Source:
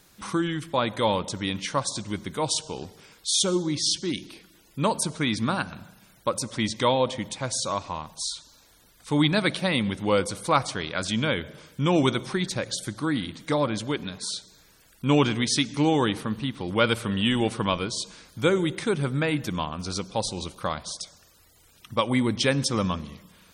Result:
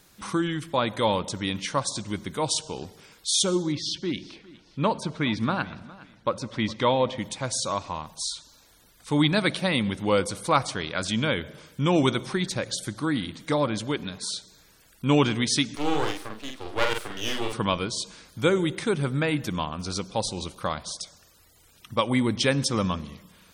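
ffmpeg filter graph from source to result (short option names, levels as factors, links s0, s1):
-filter_complex "[0:a]asettb=1/sr,asplit=3[s0][s1][s2];[s0]atrim=end=3.724[s3];[s1]atrim=start=3.72:end=7.18,asetpts=PTS-STARTPTS,afade=t=in:d=0.004:c=qsin,afade=t=out:st=3.456:d=0.004:c=qsin,lowpass=3700,aecho=1:1:410|820:0.0944|0.0283,atrim=end_sample=152586[s4];[s2]atrim=start=7.176[s5];[s3][s4]acrossfade=d=0.004:c1=hsin:c2=qsin[s6];[s6][s5]acrossfade=d=0.004:c1=qsin:c2=hsin,asettb=1/sr,asplit=3[s7][s8][s9];[s7]atrim=end=15.754[s10];[s8]atrim=start=15.75:end=17.53,asetpts=PTS-STARTPTS,afade=t=in:d=0.004:c=qsin,afade=t=out:st=1.776:d=0.004:c=qsin,highpass=f=290:w=0.5412,highpass=f=290:w=1.3066,aeval=exprs='max(val(0),0)':c=same,asplit=2[s11][s12];[s12]adelay=47,volume=0.631[s13];[s11][s13]amix=inputs=2:normalize=0,atrim=end_sample=78498[s14];[s9]atrim=start=17.526[s15];[s10][s14]acrossfade=d=0.004:c1=hsin:c2=qsin[s16];[s16][s15]acrossfade=d=0.004:c1=qsin:c2=hsin"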